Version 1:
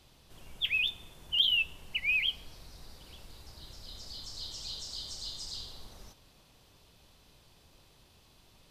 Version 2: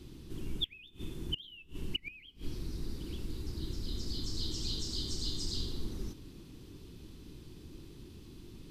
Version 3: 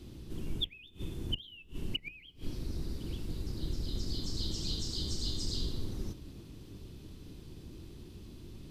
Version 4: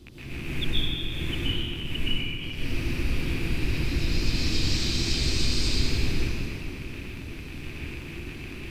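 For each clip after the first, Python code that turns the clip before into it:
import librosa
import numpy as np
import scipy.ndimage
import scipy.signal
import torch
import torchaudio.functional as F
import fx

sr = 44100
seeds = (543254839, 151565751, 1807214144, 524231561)

y1 = fx.low_shelf_res(x, sr, hz=460.0, db=11.0, q=3.0)
y1 = fx.gate_flip(y1, sr, shuts_db=-23.0, range_db=-26)
y1 = y1 * librosa.db_to_amplitude(1.5)
y2 = fx.octave_divider(y1, sr, octaves=1, level_db=0.0)
y3 = fx.rattle_buzz(y2, sr, strikes_db=-43.0, level_db=-31.0)
y3 = fx.rev_plate(y3, sr, seeds[0], rt60_s=2.7, hf_ratio=0.75, predelay_ms=105, drr_db=-10.0)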